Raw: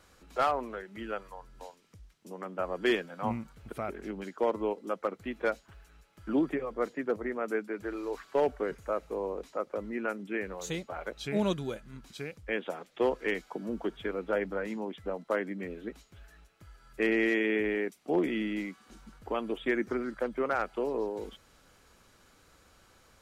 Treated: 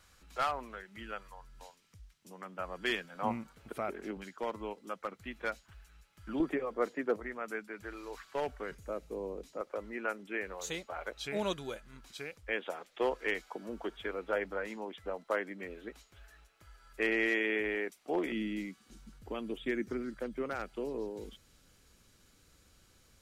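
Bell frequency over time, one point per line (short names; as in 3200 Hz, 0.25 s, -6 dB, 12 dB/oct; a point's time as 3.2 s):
bell -10.5 dB 2.5 oct
390 Hz
from 3.15 s 65 Hz
from 4.17 s 410 Hz
from 6.4 s 63 Hz
from 7.2 s 360 Hz
from 8.75 s 1100 Hz
from 9.61 s 160 Hz
from 18.32 s 910 Hz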